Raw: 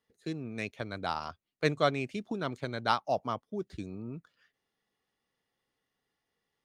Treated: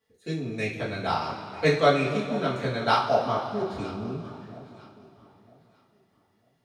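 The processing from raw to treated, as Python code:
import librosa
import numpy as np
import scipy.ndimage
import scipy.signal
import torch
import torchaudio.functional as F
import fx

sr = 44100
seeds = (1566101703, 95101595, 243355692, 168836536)

y = fx.echo_alternate(x, sr, ms=475, hz=930.0, feedback_pct=50, wet_db=-13.0)
y = fx.rev_double_slope(y, sr, seeds[0], early_s=0.33, late_s=3.2, knee_db=-16, drr_db=-8.5)
y = y * 10.0 ** (-2.0 / 20.0)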